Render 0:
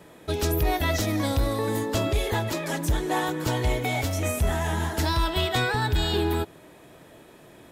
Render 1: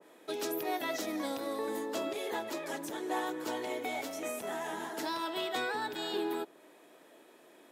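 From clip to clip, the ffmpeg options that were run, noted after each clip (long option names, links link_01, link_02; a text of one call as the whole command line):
ffmpeg -i in.wav -af "highpass=frequency=260:width=0.5412,highpass=frequency=260:width=1.3066,adynamicequalizer=threshold=0.00794:dfrequency=1600:dqfactor=0.7:tfrequency=1600:tqfactor=0.7:attack=5:release=100:ratio=0.375:range=1.5:mode=cutabove:tftype=highshelf,volume=-7.5dB" out.wav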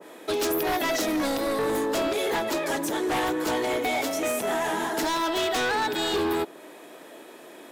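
ffmpeg -i in.wav -af "aeval=exprs='0.0841*sin(PI/2*2.82*val(0)/0.0841)':channel_layout=same" out.wav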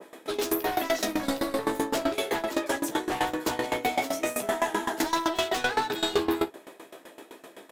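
ffmpeg -i in.wav -filter_complex "[0:a]asplit=2[link_01][link_02];[link_02]aecho=0:1:15|57:0.631|0.282[link_03];[link_01][link_03]amix=inputs=2:normalize=0,aeval=exprs='val(0)*pow(10,-18*if(lt(mod(7.8*n/s,1),2*abs(7.8)/1000),1-mod(7.8*n/s,1)/(2*abs(7.8)/1000),(mod(7.8*n/s,1)-2*abs(7.8)/1000)/(1-2*abs(7.8)/1000))/20)':channel_layout=same,volume=2.5dB" out.wav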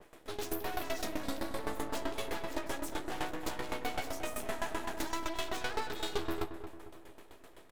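ffmpeg -i in.wav -filter_complex "[0:a]aeval=exprs='max(val(0),0)':channel_layout=same,asplit=2[link_01][link_02];[link_02]adelay=225,lowpass=frequency=1600:poles=1,volume=-9.5dB,asplit=2[link_03][link_04];[link_04]adelay=225,lowpass=frequency=1600:poles=1,volume=0.5,asplit=2[link_05][link_06];[link_06]adelay=225,lowpass=frequency=1600:poles=1,volume=0.5,asplit=2[link_07][link_08];[link_08]adelay=225,lowpass=frequency=1600:poles=1,volume=0.5,asplit=2[link_09][link_10];[link_10]adelay=225,lowpass=frequency=1600:poles=1,volume=0.5,asplit=2[link_11][link_12];[link_12]adelay=225,lowpass=frequency=1600:poles=1,volume=0.5[link_13];[link_01][link_03][link_05][link_07][link_09][link_11][link_13]amix=inputs=7:normalize=0,volume=-6dB" out.wav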